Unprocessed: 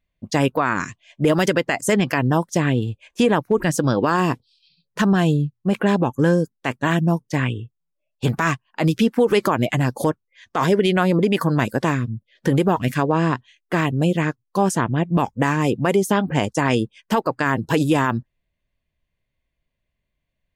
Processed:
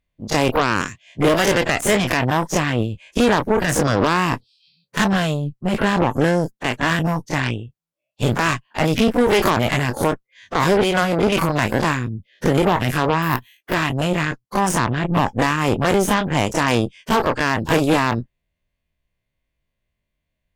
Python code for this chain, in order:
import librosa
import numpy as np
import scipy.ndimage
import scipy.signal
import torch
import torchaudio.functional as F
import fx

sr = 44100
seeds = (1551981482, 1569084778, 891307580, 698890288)

y = fx.spec_dilate(x, sr, span_ms=60)
y = fx.resample_bad(y, sr, factor=3, down='none', up='hold', at=(13.22, 13.74))
y = fx.cheby_harmonics(y, sr, harmonics=(6,), levels_db=(-14,), full_scale_db=-2.0)
y = y * librosa.db_to_amplitude(-3.0)